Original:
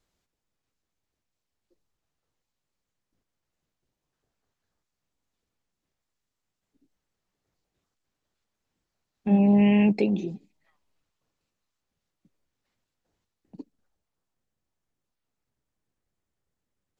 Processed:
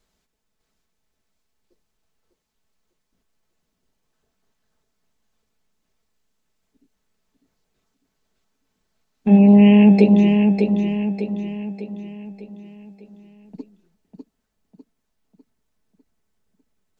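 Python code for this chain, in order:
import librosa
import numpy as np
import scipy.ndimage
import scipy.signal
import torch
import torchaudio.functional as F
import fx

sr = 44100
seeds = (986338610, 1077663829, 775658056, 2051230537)

p1 = x + 0.44 * np.pad(x, (int(4.6 * sr / 1000.0), 0))[:len(x)]
p2 = p1 + fx.echo_feedback(p1, sr, ms=600, feedback_pct=47, wet_db=-5.0, dry=0)
y = p2 * 10.0 ** (5.5 / 20.0)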